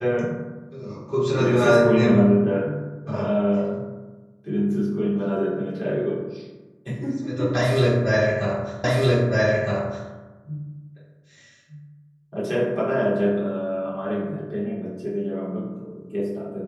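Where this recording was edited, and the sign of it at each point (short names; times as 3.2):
8.84 repeat of the last 1.26 s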